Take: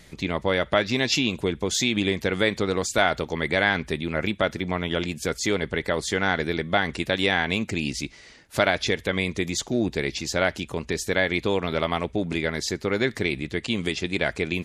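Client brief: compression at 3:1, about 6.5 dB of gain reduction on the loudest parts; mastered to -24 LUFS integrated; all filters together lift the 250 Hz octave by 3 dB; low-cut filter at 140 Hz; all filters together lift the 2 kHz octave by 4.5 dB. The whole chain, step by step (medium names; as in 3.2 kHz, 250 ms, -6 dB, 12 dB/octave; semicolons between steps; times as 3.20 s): high-pass 140 Hz; peaking EQ 250 Hz +4.5 dB; peaking EQ 2 kHz +5.5 dB; compression 3:1, threshold -22 dBFS; trim +2.5 dB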